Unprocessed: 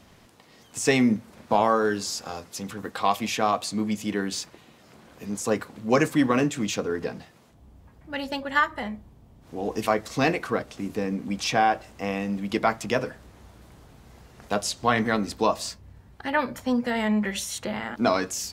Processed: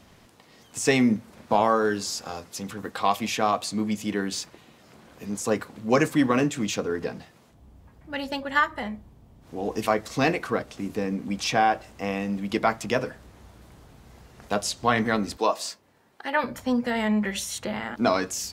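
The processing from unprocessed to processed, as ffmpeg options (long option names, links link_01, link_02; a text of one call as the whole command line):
ffmpeg -i in.wav -filter_complex "[0:a]asettb=1/sr,asplit=3[link_01][link_02][link_03];[link_01]atrim=end=15.374[link_04];[link_02]atrim=start=15.37:end=16.44,asetpts=PTS-STARTPTS,afade=type=in:duration=0.004:curve=qsin,afade=type=out:start_time=1.066:duration=0.004:curve=qsin,highpass=340[link_05];[link_03]atrim=start=16.436[link_06];[link_04][link_05]acrossfade=duration=0.004:curve1=hsin:curve2=qsin[link_07];[link_07][link_06]acrossfade=duration=0.004:curve1=qsin:curve2=hsin" out.wav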